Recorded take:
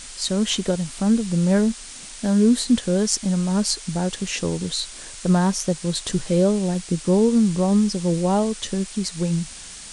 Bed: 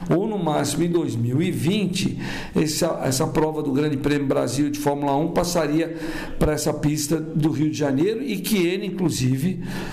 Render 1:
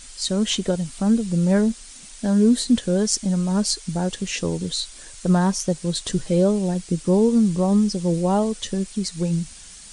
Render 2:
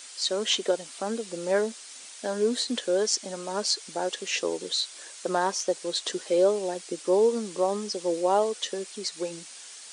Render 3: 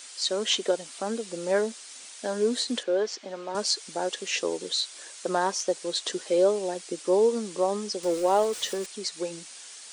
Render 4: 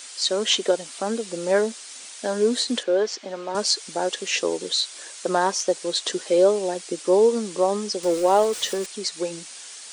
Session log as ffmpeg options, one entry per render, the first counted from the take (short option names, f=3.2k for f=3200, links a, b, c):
-af "afftdn=nr=7:nf=-39"
-filter_complex "[0:a]highpass=f=360:w=0.5412,highpass=f=360:w=1.3066,acrossover=split=7200[a][b];[b]acompressor=threshold=-48dB:ratio=4:attack=1:release=60[c];[a][c]amix=inputs=2:normalize=0"
-filter_complex "[0:a]asettb=1/sr,asplit=3[a][b][c];[a]atrim=end=2.834[d];[b]atrim=start=2.83:end=3.55,asetpts=PTS-STARTPTS,afade=t=in:d=0.004:c=qsin,afade=t=out:st=0.716:d=0.004:c=qsin,highpass=250,lowpass=3.2k[e];[c]atrim=start=3.546[f];[d][e]acrossfade=d=0.004:c1=hsin:c2=qsin[g];[g][f]acrossfade=d=0.004:c1=qsin:c2=hsin,asettb=1/sr,asplit=3[h][i][j];[h]atrim=end=8.034[k];[i]atrim=start=8.03:end=8.86,asetpts=PTS-STARTPTS,afade=t=in:d=0.004:c=qsin,afade=t=out:st=0.826:d=0.004:c=qsin,aeval=exprs='val(0)+0.5*0.0141*sgn(val(0))':c=same[l];[j]atrim=start=8.856[m];[k][l]acrossfade=d=0.004:c1=hsin:c2=qsin[n];[n][m]acrossfade=d=0.004:c1=qsin:c2=hsin"
-af "volume=4.5dB"